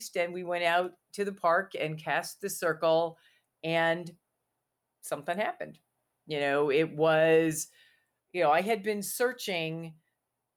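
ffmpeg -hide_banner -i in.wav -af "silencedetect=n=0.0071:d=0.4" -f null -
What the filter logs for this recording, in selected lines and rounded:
silence_start: 3.11
silence_end: 3.64 | silence_duration: 0.52
silence_start: 4.10
silence_end: 5.04 | silence_duration: 0.94
silence_start: 5.71
silence_end: 6.29 | silence_duration: 0.59
silence_start: 7.66
silence_end: 8.34 | silence_duration: 0.69
silence_start: 9.91
silence_end: 10.56 | silence_duration: 0.66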